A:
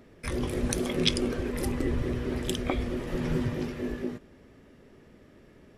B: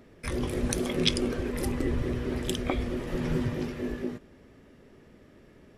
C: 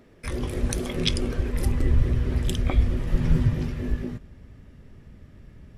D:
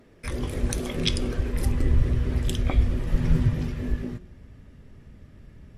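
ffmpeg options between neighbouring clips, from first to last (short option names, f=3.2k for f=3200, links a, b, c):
-af anull
-af "asubboost=boost=7:cutoff=140"
-af "bandreject=f=180:t=h:w=4,bandreject=f=360:t=h:w=4,bandreject=f=540:t=h:w=4,bandreject=f=720:t=h:w=4,bandreject=f=900:t=h:w=4,bandreject=f=1.08k:t=h:w=4,bandreject=f=1.26k:t=h:w=4,bandreject=f=1.44k:t=h:w=4,bandreject=f=1.62k:t=h:w=4,bandreject=f=1.8k:t=h:w=4,bandreject=f=1.98k:t=h:w=4,bandreject=f=2.16k:t=h:w=4,bandreject=f=2.34k:t=h:w=4,bandreject=f=2.52k:t=h:w=4,bandreject=f=2.7k:t=h:w=4,bandreject=f=2.88k:t=h:w=4,bandreject=f=3.06k:t=h:w=4,bandreject=f=3.24k:t=h:w=4,bandreject=f=3.42k:t=h:w=4,bandreject=f=3.6k:t=h:w=4,bandreject=f=3.78k:t=h:w=4,bandreject=f=3.96k:t=h:w=4,bandreject=f=4.14k:t=h:w=4,bandreject=f=4.32k:t=h:w=4,bandreject=f=4.5k:t=h:w=4,bandreject=f=4.68k:t=h:w=4,bandreject=f=4.86k:t=h:w=4,bandreject=f=5.04k:t=h:w=4,bandreject=f=5.22k:t=h:w=4,bandreject=f=5.4k:t=h:w=4,bandreject=f=5.58k:t=h:w=4,bandreject=f=5.76k:t=h:w=4,bandreject=f=5.94k:t=h:w=4,bandreject=f=6.12k:t=h:w=4,bandreject=f=6.3k:t=h:w=4,bandreject=f=6.48k:t=h:w=4" -ar 48000 -c:a libmp3lame -b:a 64k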